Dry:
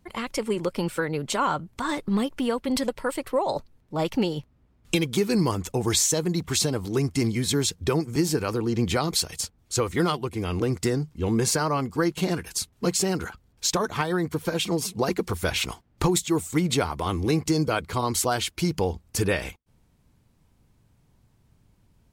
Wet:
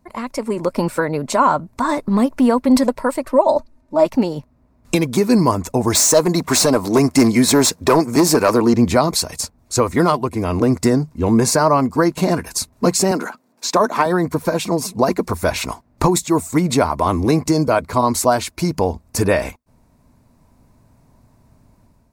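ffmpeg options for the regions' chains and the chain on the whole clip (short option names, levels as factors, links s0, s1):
-filter_complex "[0:a]asettb=1/sr,asplit=3[s0][s1][s2];[s0]atrim=end=3.254[s3];[s1]atrim=start=3.25:end=4.06,asetpts=PTS-STARTPTS,afade=t=in:d=0.004:c=qsin,afade=t=out:st=0.806:d=0.004:c=qsin,lowpass=11000,aecho=1:1:3.3:0.74,atrim=end_sample=35721[s4];[s2]atrim=start=4.056[s5];[s3][s4]acrossfade=d=0.004:c1=hsin:c2=qsin[s6];[s6][s5]acrossfade=d=0.004:c1=qsin:c2=hsin,asettb=1/sr,asplit=3[s7][s8][s9];[s7]atrim=end=5.954[s10];[s8]atrim=start=5.95:end=8.74,asetpts=PTS-STARTPTS,afade=t=in:d=0.004:c=qsin,afade=t=out:st=2.786:d=0.004:c=qsin,highpass=f=330:p=1,acontrast=75,asoftclip=type=hard:threshold=0.15[s11];[s9]atrim=start=8.736[s12];[s10][s11]acrossfade=d=0.004:c1=hsin:c2=qsin[s13];[s13][s12]acrossfade=d=0.004:c1=qsin:c2=hsin,asettb=1/sr,asplit=3[s14][s15][s16];[s14]atrim=end=13.114[s17];[s15]atrim=start=13.11:end=14.06,asetpts=PTS-STARTPTS,afade=t=in:d=0.004:c=qsin,afade=t=out:st=0.946:d=0.004:c=qsin,highpass=f=200:w=0.5412,highpass=f=200:w=1.3066,acrossover=split=5000[s18][s19];[s19]acompressor=threshold=0.0224:ratio=4:attack=1:release=60[s20];[s18][s20]amix=inputs=2:normalize=0[s21];[s16]atrim=start=14.056[s22];[s17][s21]acrossfade=d=0.004:c1=hsin:c2=qsin[s23];[s23][s22]acrossfade=d=0.004:c1=qsin:c2=hsin,equalizer=f=250:t=o:w=0.33:g=8,equalizer=f=630:t=o:w=0.33:g=10,equalizer=f=1000:t=o:w=0.33:g=8,equalizer=f=3150:t=o:w=0.33:g=-11,dynaudnorm=f=420:g=3:m=2.51"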